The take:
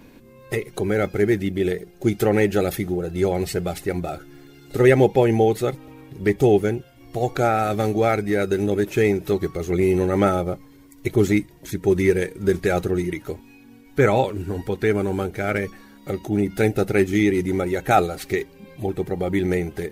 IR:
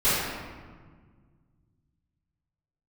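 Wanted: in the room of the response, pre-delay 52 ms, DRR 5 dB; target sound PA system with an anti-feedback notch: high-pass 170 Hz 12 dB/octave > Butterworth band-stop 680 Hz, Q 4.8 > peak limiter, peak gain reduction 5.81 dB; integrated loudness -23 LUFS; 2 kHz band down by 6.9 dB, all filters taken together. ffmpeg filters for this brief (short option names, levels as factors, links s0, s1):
-filter_complex "[0:a]equalizer=f=2000:t=o:g=-8.5,asplit=2[s0][s1];[1:a]atrim=start_sample=2205,adelay=52[s2];[s1][s2]afir=irnorm=-1:irlink=0,volume=0.0794[s3];[s0][s3]amix=inputs=2:normalize=0,highpass=170,asuperstop=centerf=680:order=8:qfactor=4.8,alimiter=limit=0.282:level=0:latency=1"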